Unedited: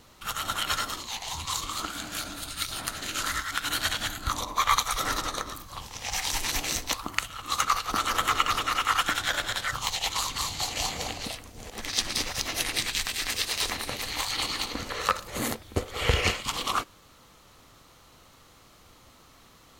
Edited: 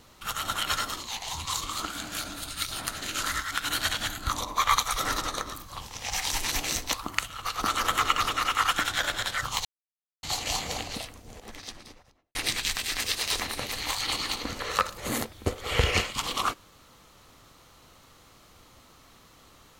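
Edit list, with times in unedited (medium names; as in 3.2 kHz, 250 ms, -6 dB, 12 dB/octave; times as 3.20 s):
7.45–7.75 s: delete
9.95–10.53 s: mute
11.11–12.65 s: studio fade out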